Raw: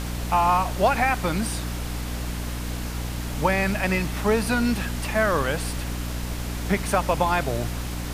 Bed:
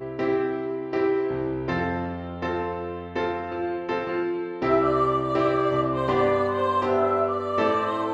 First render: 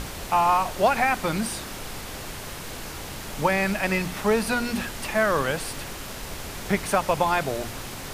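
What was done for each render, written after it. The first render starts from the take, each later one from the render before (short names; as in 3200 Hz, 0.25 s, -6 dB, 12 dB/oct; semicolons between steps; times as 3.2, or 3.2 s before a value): notches 60/120/180/240/300 Hz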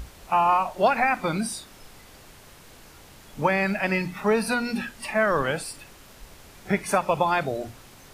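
noise print and reduce 13 dB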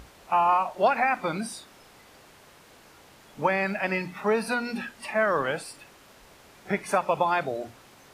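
HPF 590 Hz 6 dB/oct; tilt -2 dB/oct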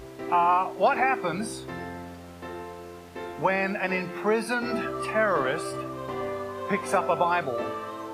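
add bed -10.5 dB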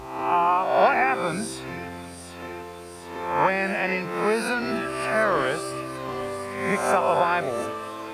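spectral swells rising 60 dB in 0.86 s; thin delay 0.741 s, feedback 62%, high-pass 3300 Hz, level -8.5 dB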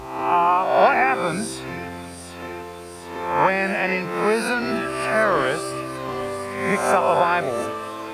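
gain +3 dB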